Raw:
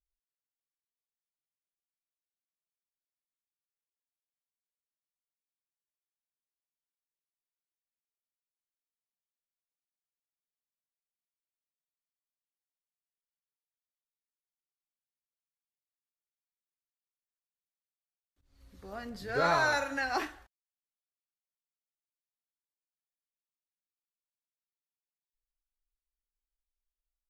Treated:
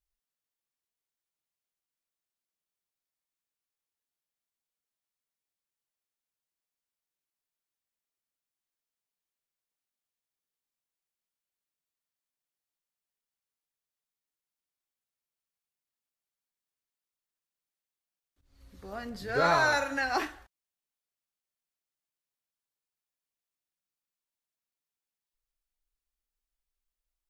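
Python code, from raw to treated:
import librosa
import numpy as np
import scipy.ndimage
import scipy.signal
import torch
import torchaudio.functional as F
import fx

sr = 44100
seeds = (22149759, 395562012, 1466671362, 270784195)

y = x * librosa.db_to_amplitude(2.5)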